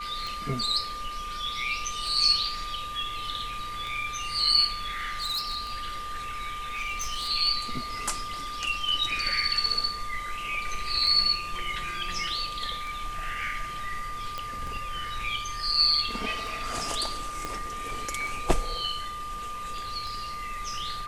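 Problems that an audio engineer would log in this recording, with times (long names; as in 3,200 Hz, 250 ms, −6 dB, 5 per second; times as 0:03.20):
scratch tick 33 1/3 rpm
whistle 1,200 Hz −34 dBFS
0:04.74–0:05.56: clipping −26 dBFS
0:06.53–0:07.29: clipping −27 dBFS
0:14.38: click −18 dBFS
0:17.45: click −18 dBFS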